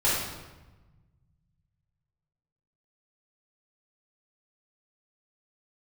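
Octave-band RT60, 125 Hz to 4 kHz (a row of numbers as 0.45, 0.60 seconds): 2.9, 1.8, 1.2, 1.1, 1.0, 0.85 seconds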